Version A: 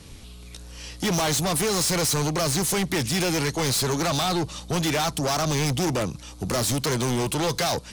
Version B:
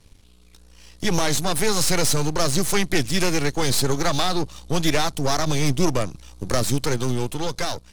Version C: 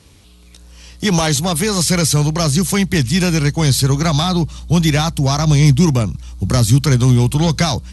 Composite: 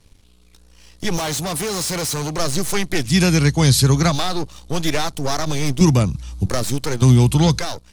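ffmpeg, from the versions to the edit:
-filter_complex "[2:a]asplit=3[a][b][c];[1:a]asplit=5[d][e][f][g][h];[d]atrim=end=1.172[i];[0:a]atrim=start=1.168:end=2.382[j];[e]atrim=start=2.378:end=3.14[k];[a]atrim=start=3.04:end=4.17[l];[f]atrim=start=4.07:end=5.812[m];[b]atrim=start=5.808:end=6.462[n];[g]atrim=start=6.458:end=7.022[o];[c]atrim=start=7.018:end=7.592[p];[h]atrim=start=7.588[q];[i][j]acrossfade=d=0.004:c1=hsin:c2=hsin[r];[r][k]acrossfade=d=0.004:c1=hsin:c2=hsin[s];[s][l]acrossfade=d=0.1:c1=tri:c2=tri[t];[t][m]acrossfade=d=0.1:c1=tri:c2=tri[u];[u][n]acrossfade=d=0.004:c1=hsin:c2=hsin[v];[v][o]acrossfade=d=0.004:c1=hsin:c2=hsin[w];[w][p]acrossfade=d=0.004:c1=hsin:c2=hsin[x];[x][q]acrossfade=d=0.004:c1=hsin:c2=hsin"

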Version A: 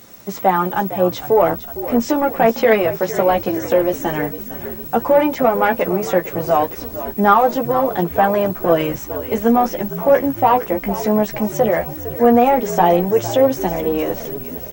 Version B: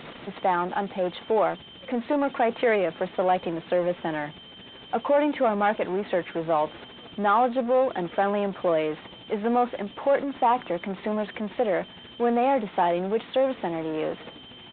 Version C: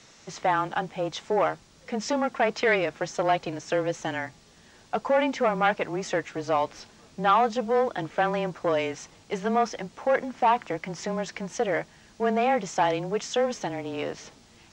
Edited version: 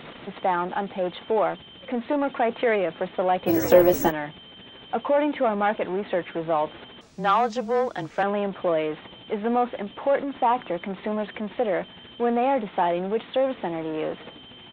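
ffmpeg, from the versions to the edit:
-filter_complex "[1:a]asplit=3[a][b][c];[a]atrim=end=3.5[d];[0:a]atrim=start=3.46:end=4.12[e];[b]atrim=start=4.08:end=7.012[f];[2:a]atrim=start=7.008:end=8.232[g];[c]atrim=start=8.228[h];[d][e]acrossfade=d=0.04:c1=tri:c2=tri[i];[i][f]acrossfade=d=0.04:c1=tri:c2=tri[j];[j][g]acrossfade=d=0.004:c1=hsin:c2=hsin[k];[k][h]acrossfade=d=0.004:c1=hsin:c2=hsin"

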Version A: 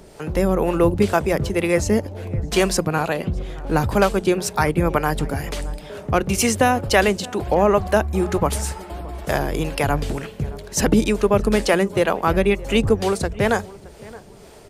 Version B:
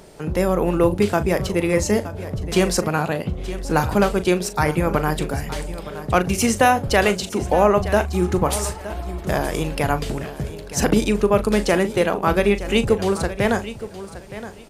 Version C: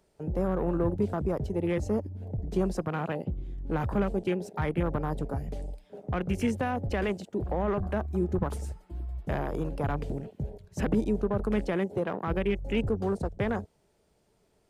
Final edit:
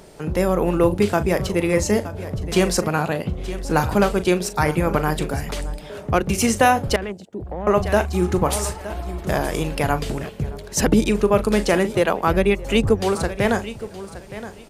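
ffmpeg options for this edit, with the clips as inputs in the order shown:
-filter_complex "[0:a]asplit=3[a][b][c];[1:a]asplit=5[d][e][f][g][h];[d]atrim=end=5.512[i];[a]atrim=start=5.508:end=6.302[j];[e]atrim=start=6.298:end=6.962[k];[2:a]atrim=start=6.958:end=7.672[l];[f]atrim=start=7.668:end=10.292[m];[b]atrim=start=10.288:end=11.092[n];[g]atrim=start=11.088:end=11.952[o];[c]atrim=start=11.948:end=13.152[p];[h]atrim=start=13.148[q];[i][j]acrossfade=d=0.004:c1=hsin:c2=hsin[r];[r][k]acrossfade=d=0.004:c1=hsin:c2=hsin[s];[s][l]acrossfade=d=0.004:c1=hsin:c2=hsin[t];[t][m]acrossfade=d=0.004:c1=hsin:c2=hsin[u];[u][n]acrossfade=d=0.004:c1=hsin:c2=hsin[v];[v][o]acrossfade=d=0.004:c1=hsin:c2=hsin[w];[w][p]acrossfade=d=0.004:c1=hsin:c2=hsin[x];[x][q]acrossfade=d=0.004:c1=hsin:c2=hsin"

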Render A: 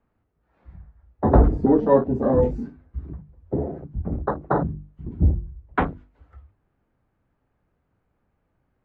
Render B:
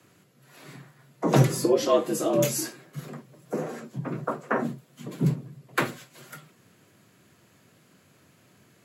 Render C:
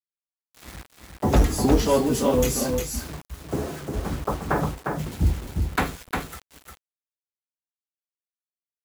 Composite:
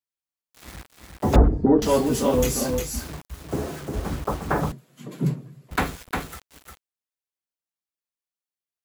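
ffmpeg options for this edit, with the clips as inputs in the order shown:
-filter_complex "[2:a]asplit=3[a][b][c];[a]atrim=end=1.362[d];[0:a]atrim=start=1.358:end=1.822[e];[b]atrim=start=1.818:end=4.722[f];[1:a]atrim=start=4.718:end=5.712[g];[c]atrim=start=5.708[h];[d][e]acrossfade=d=0.004:c1=hsin:c2=hsin[i];[i][f]acrossfade=d=0.004:c1=hsin:c2=hsin[j];[j][g]acrossfade=d=0.004:c1=hsin:c2=hsin[k];[k][h]acrossfade=d=0.004:c1=hsin:c2=hsin"

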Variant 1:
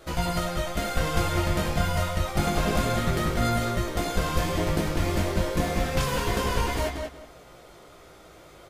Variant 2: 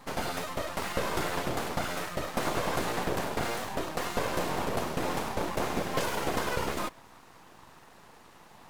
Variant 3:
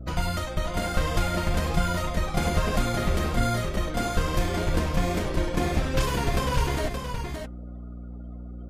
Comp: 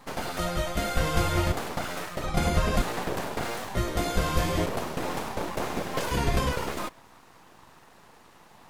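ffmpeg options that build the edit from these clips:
-filter_complex "[0:a]asplit=2[a][b];[2:a]asplit=2[c][d];[1:a]asplit=5[e][f][g][h][i];[e]atrim=end=0.392[j];[a]atrim=start=0.388:end=1.522[k];[f]atrim=start=1.518:end=2.242[l];[c]atrim=start=2.238:end=2.822[m];[g]atrim=start=2.818:end=3.752[n];[b]atrim=start=3.748:end=4.662[o];[h]atrim=start=4.658:end=6.112[p];[d]atrim=start=6.108:end=6.522[q];[i]atrim=start=6.518[r];[j][k]acrossfade=d=0.004:c1=hsin:c2=hsin[s];[s][l]acrossfade=d=0.004:c1=hsin:c2=hsin[t];[t][m]acrossfade=d=0.004:c1=hsin:c2=hsin[u];[u][n]acrossfade=d=0.004:c1=hsin:c2=hsin[v];[v][o]acrossfade=d=0.004:c1=hsin:c2=hsin[w];[w][p]acrossfade=d=0.004:c1=hsin:c2=hsin[x];[x][q]acrossfade=d=0.004:c1=hsin:c2=hsin[y];[y][r]acrossfade=d=0.004:c1=hsin:c2=hsin"

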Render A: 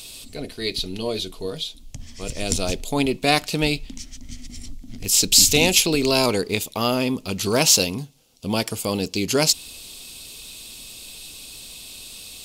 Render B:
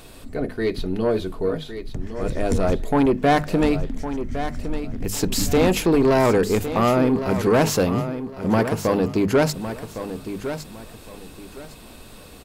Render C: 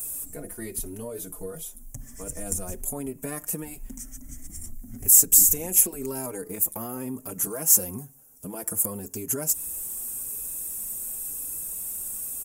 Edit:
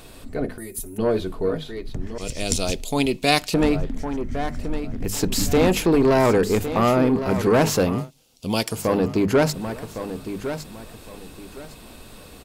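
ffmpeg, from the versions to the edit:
-filter_complex "[0:a]asplit=2[a][b];[1:a]asplit=4[c][d][e][f];[c]atrim=end=0.582[g];[2:a]atrim=start=0.578:end=0.982[h];[d]atrim=start=0.978:end=2.182[i];[a]atrim=start=2.178:end=3.542[j];[e]atrim=start=3.538:end=8.11[k];[b]atrim=start=7.87:end=8.93[l];[f]atrim=start=8.69[m];[g][h]acrossfade=d=0.004:c1=hsin:c2=hsin[n];[n][i]acrossfade=d=0.004:c1=hsin:c2=hsin[o];[o][j]acrossfade=d=0.004:c1=hsin:c2=hsin[p];[p][k]acrossfade=d=0.004:c1=hsin:c2=hsin[q];[q][l]acrossfade=d=0.24:c1=tri:c2=tri[r];[r][m]acrossfade=d=0.24:c1=tri:c2=tri"

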